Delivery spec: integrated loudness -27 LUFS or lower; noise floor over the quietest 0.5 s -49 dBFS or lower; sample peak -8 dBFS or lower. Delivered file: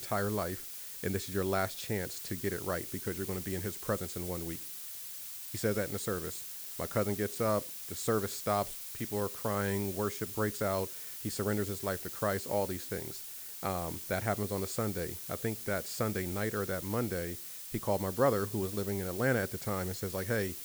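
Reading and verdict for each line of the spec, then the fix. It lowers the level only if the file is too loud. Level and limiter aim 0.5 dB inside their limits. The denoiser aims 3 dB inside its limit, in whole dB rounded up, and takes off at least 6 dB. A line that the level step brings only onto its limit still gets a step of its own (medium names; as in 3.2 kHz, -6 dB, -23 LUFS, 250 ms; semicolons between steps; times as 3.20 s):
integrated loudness -34.5 LUFS: pass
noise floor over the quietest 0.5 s -44 dBFS: fail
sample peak -15.5 dBFS: pass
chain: noise reduction 8 dB, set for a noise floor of -44 dBFS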